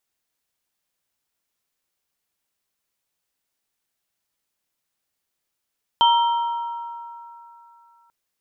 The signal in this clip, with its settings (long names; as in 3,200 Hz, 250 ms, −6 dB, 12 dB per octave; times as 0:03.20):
inharmonic partials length 2.09 s, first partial 939 Hz, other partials 1,340/3,130 Hz, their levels −18/−5 dB, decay 2.79 s, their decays 4.09/1.12 s, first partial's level −12 dB